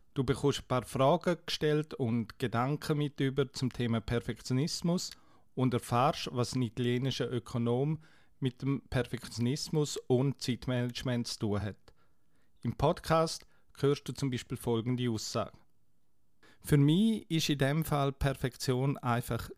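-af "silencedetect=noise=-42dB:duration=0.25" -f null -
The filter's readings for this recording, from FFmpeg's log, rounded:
silence_start: 5.13
silence_end: 5.58 | silence_duration: 0.44
silence_start: 7.96
silence_end: 8.42 | silence_duration: 0.46
silence_start: 11.88
silence_end: 12.63 | silence_duration: 0.75
silence_start: 13.42
silence_end: 13.75 | silence_duration: 0.33
silence_start: 15.49
silence_end: 16.65 | silence_duration: 1.16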